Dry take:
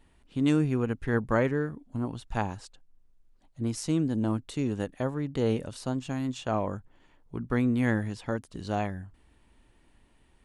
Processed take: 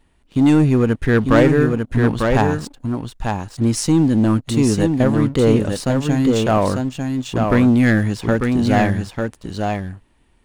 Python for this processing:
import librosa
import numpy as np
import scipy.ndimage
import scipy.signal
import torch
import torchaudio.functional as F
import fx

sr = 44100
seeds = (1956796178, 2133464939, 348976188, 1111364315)

p1 = fx.leveller(x, sr, passes=2)
p2 = p1 + fx.echo_single(p1, sr, ms=897, db=-4.5, dry=0)
y = F.gain(torch.from_numpy(p2), 6.5).numpy()